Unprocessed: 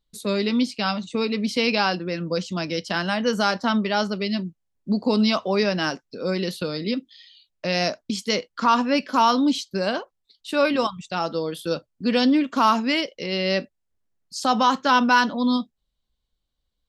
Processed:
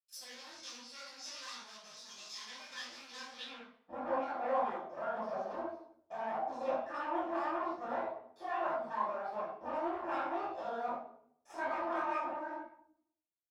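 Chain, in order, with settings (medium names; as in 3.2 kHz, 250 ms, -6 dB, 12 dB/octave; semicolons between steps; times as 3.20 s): spectrogram pixelated in time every 50 ms; hum notches 50/100/150/200/250/300 Hz; low-pass that closes with the level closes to 1.8 kHz, closed at -21.5 dBFS; peaking EQ 1.6 kHz -11.5 dB 3 oct; band-stop 630 Hz, Q 17; waveshaping leveller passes 5; inharmonic resonator 63 Hz, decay 0.44 s, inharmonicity 0.008; Chebyshev shaper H 4 -12 dB, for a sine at -14 dBFS; band-pass sweep 4.2 kHz -> 640 Hz, 4.09–4.83 s; tape speed +25%; reverberation RT60 0.65 s, pre-delay 3 ms, DRR -5 dB; detune thickener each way 59 cents; trim -7 dB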